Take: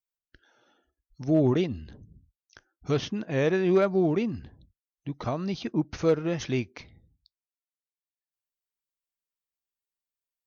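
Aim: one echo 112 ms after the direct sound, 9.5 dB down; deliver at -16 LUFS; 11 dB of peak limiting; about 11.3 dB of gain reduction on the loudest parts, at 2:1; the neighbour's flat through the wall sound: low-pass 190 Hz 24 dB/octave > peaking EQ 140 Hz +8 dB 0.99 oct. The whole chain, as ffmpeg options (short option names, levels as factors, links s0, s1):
-af "acompressor=threshold=0.0112:ratio=2,alimiter=level_in=3.55:limit=0.0631:level=0:latency=1,volume=0.282,lowpass=f=190:w=0.5412,lowpass=f=190:w=1.3066,equalizer=f=140:t=o:w=0.99:g=8,aecho=1:1:112:0.335,volume=23.7"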